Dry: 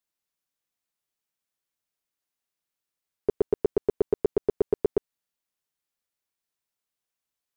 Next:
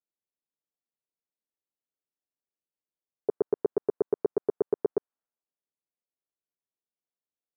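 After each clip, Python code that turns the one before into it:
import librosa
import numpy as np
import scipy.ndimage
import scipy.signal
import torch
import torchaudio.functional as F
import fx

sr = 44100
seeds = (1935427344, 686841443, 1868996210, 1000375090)

y = fx.highpass(x, sr, hz=360.0, slope=6)
y = fx.env_lowpass(y, sr, base_hz=500.0, full_db=-28.0)
y = scipy.signal.sosfilt(scipy.signal.butter(4, 1500.0, 'lowpass', fs=sr, output='sos'), y)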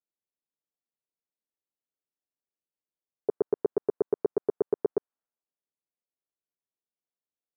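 y = x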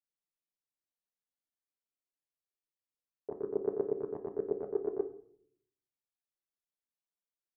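y = fx.chorus_voices(x, sr, voices=2, hz=0.67, base_ms=27, depth_ms=3.1, mix_pct=65)
y = fx.room_shoebox(y, sr, seeds[0], volume_m3=100.0, walls='mixed', distance_m=0.36)
y = y * 10.0 ** (-5.0 / 20.0)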